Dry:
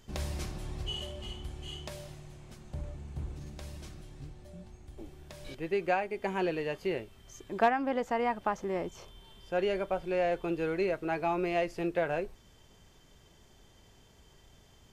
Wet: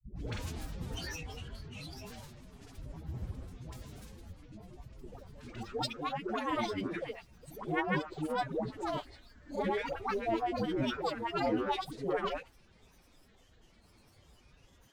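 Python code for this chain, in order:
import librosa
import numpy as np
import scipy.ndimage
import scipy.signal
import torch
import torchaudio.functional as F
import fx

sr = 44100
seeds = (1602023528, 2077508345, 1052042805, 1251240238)

y = fx.granulator(x, sr, seeds[0], grain_ms=100.0, per_s=20.0, spray_ms=100.0, spread_st=12)
y = fx.pitch_keep_formants(y, sr, semitones=3.5)
y = fx.dispersion(y, sr, late='highs', ms=146.0, hz=500.0)
y = y * librosa.db_to_amplitude(-1.0)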